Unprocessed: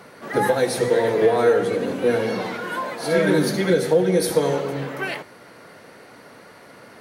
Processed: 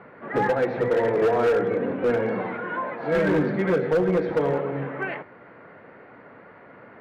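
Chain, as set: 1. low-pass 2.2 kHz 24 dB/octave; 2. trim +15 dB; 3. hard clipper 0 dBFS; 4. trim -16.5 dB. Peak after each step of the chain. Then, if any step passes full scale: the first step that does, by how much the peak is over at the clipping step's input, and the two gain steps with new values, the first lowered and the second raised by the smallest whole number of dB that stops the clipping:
-7.5 dBFS, +7.5 dBFS, 0.0 dBFS, -16.5 dBFS; step 2, 7.5 dB; step 2 +7 dB, step 4 -8.5 dB

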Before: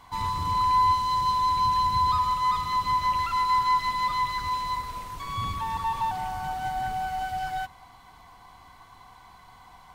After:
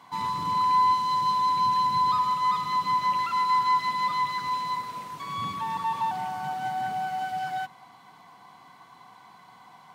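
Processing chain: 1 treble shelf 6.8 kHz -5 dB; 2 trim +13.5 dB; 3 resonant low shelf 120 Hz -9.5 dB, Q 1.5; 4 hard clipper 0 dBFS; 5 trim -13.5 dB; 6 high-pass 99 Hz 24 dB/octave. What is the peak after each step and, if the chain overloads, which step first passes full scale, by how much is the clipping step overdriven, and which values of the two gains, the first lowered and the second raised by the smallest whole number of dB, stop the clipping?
-14.5 dBFS, -1.0 dBFS, -1.5 dBFS, -1.5 dBFS, -15.0 dBFS, -15.0 dBFS; nothing clips

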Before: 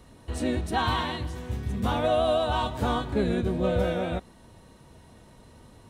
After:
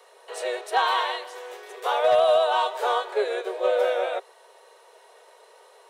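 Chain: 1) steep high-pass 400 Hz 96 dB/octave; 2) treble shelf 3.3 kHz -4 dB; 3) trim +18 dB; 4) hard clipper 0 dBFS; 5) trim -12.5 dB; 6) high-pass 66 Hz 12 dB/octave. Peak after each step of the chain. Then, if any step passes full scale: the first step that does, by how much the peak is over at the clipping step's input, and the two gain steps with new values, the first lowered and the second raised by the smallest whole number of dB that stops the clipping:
-14.5 dBFS, -14.5 dBFS, +3.5 dBFS, 0.0 dBFS, -12.5 dBFS, -11.5 dBFS; step 3, 3.5 dB; step 3 +14 dB, step 5 -8.5 dB

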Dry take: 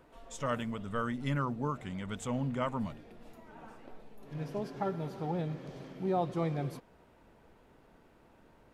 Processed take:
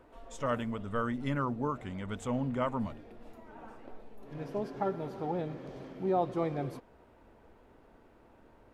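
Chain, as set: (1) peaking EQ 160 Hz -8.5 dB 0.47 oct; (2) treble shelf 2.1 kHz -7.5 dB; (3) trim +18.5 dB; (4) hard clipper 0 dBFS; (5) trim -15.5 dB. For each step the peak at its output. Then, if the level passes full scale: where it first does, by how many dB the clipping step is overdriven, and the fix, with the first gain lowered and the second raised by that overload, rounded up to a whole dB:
-20.5 dBFS, -21.0 dBFS, -2.5 dBFS, -2.5 dBFS, -18.0 dBFS; nothing clips

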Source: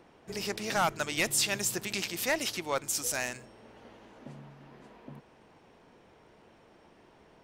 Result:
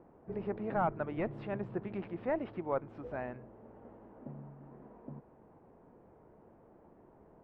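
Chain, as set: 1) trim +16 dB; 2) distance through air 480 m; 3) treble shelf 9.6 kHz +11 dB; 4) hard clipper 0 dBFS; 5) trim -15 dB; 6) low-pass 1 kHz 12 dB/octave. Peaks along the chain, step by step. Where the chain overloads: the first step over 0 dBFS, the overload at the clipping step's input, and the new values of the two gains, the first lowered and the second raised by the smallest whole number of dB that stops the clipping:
-4.0 dBFS, -5.0 dBFS, -5.0 dBFS, -5.0 dBFS, -20.0 dBFS, -21.0 dBFS; nothing clips

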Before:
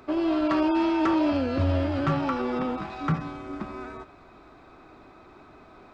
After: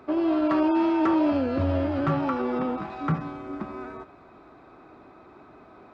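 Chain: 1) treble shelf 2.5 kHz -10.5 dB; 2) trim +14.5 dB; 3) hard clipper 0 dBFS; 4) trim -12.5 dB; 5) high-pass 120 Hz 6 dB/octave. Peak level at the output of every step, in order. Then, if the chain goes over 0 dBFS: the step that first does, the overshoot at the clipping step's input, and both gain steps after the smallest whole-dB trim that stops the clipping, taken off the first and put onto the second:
-16.5 dBFS, -2.0 dBFS, -2.0 dBFS, -14.5 dBFS, -13.0 dBFS; nothing clips

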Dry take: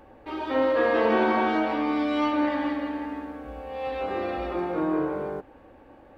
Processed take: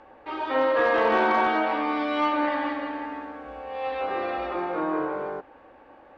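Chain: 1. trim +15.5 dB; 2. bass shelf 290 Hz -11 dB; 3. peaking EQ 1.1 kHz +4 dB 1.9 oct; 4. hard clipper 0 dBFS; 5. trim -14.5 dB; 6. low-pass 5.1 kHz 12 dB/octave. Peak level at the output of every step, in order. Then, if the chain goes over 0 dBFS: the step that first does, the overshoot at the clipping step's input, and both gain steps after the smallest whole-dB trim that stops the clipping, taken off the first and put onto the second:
+4.0 dBFS, +2.5 dBFS, +5.5 dBFS, 0.0 dBFS, -14.5 dBFS, -14.0 dBFS; step 1, 5.5 dB; step 1 +9.5 dB, step 5 -8.5 dB

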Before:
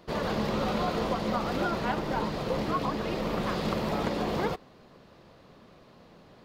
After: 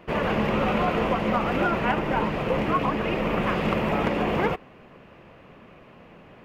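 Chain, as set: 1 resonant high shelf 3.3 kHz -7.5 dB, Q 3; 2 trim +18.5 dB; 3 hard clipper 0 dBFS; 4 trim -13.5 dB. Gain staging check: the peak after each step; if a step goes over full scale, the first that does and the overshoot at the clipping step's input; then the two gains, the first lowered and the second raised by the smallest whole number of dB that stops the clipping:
-15.0 dBFS, +3.5 dBFS, 0.0 dBFS, -13.5 dBFS; step 2, 3.5 dB; step 2 +14.5 dB, step 4 -9.5 dB

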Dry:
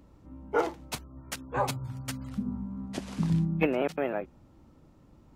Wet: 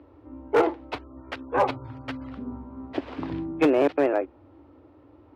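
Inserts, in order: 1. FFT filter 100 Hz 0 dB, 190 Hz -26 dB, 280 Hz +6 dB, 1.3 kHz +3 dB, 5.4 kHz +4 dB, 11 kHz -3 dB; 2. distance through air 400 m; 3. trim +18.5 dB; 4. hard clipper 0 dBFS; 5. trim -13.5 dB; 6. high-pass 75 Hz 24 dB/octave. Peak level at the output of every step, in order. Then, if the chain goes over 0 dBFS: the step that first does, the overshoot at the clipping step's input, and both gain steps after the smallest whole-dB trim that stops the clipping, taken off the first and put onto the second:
-8.5 dBFS, -9.5 dBFS, +9.0 dBFS, 0.0 dBFS, -13.5 dBFS, -9.5 dBFS; step 3, 9.0 dB; step 3 +9.5 dB, step 5 -4.5 dB

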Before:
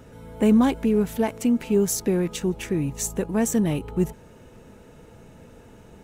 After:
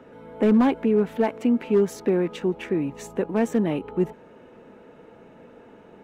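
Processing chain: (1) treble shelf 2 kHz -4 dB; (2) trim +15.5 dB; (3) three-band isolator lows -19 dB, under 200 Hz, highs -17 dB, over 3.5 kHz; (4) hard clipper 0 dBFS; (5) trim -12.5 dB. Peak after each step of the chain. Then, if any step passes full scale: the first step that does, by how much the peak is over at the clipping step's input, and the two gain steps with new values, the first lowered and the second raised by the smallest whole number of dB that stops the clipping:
-9.0 dBFS, +6.5 dBFS, +5.0 dBFS, 0.0 dBFS, -12.5 dBFS; step 2, 5.0 dB; step 2 +10.5 dB, step 5 -7.5 dB

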